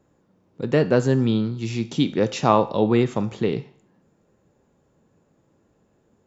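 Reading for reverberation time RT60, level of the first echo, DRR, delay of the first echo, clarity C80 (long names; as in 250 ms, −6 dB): 0.55 s, no echo audible, 11.0 dB, no echo audible, 19.5 dB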